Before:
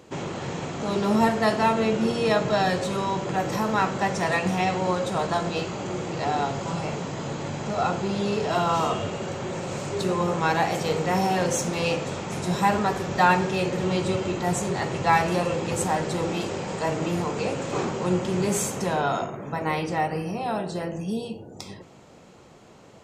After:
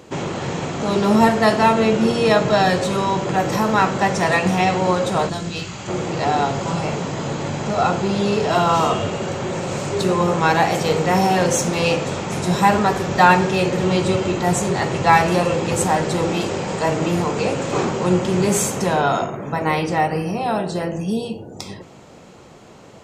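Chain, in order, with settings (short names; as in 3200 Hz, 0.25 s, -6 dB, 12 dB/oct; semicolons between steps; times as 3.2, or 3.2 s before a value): 5.28–5.87 bell 1100 Hz -> 360 Hz -13.5 dB 2.5 oct; gain +6.5 dB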